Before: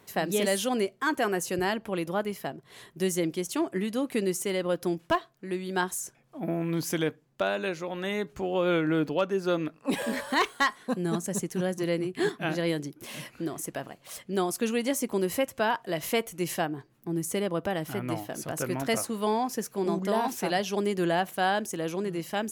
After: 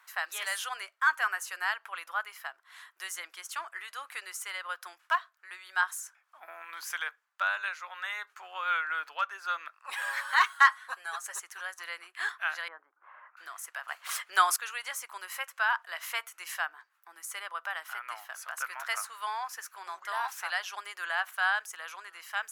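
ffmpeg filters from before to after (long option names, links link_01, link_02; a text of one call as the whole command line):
ffmpeg -i in.wav -filter_complex "[0:a]asettb=1/sr,asplit=3[link_01][link_02][link_03];[link_01]atrim=end=10.024[link_04];[link_02]atrim=start=10.02:end=11.4,asetpts=PTS-STARTPTS,afade=type=in:duration=0.004:curve=qsin,afade=type=out:start_time=1.376:duration=0.004:curve=qsin,aecho=1:1:7.3:0.75,atrim=end_sample=60858[link_05];[link_03]atrim=start=11.396[link_06];[link_04][link_05]acrossfade=duration=0.004:curve1=hsin:curve2=qsin[link_07];[link_07][link_06]acrossfade=duration=0.004:curve1=qsin:curve2=hsin,asettb=1/sr,asplit=3[link_08][link_09][link_10];[link_08]atrim=end=12.684[link_11];[link_09]atrim=start=12.68:end=13.37,asetpts=PTS-STARTPTS,afade=type=in:duration=0.004:curve=qsin,afade=type=out:start_time=0.686:duration=0.004:curve=qsin,lowpass=frequency=1300:width=0.5412,lowpass=frequency=1300:width=1.3066[link_12];[link_10]atrim=start=13.366[link_13];[link_11][link_12]acrossfade=duration=0.004:curve1=hsin:curve2=qsin[link_14];[link_14][link_13]acrossfade=duration=0.004:curve1=qsin:curve2=hsin,asplit=3[link_15][link_16][link_17];[link_15]atrim=end=13.882[link_18];[link_16]atrim=start=13.878:end=14.562,asetpts=PTS-STARTPTS,volume=11dB[link_19];[link_17]atrim=start=14.558[link_20];[link_18][link_19]acrossfade=duration=0.004:curve1=hsin:curve2=hsin[link_21];[link_21][link_20]acrossfade=duration=0.004:curve1=hsin:curve2=hsin,highpass=frequency=940:width=0.5412,highpass=frequency=940:width=1.3066,equalizer=frequency=1400:width=1.3:gain=12,volume=-5.5dB" out.wav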